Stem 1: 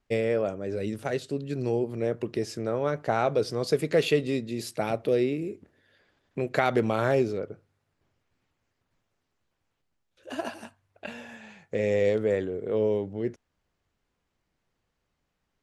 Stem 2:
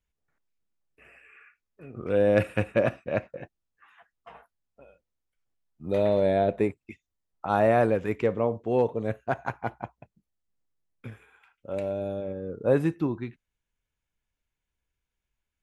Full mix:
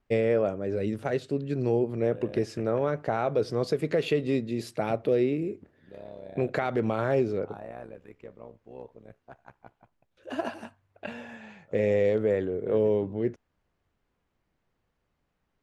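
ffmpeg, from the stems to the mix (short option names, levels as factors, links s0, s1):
-filter_complex "[0:a]highshelf=f=3800:g=-11,volume=1.26[s0];[1:a]tremolo=f=66:d=0.857,volume=0.141[s1];[s0][s1]amix=inputs=2:normalize=0,alimiter=limit=0.168:level=0:latency=1:release=163"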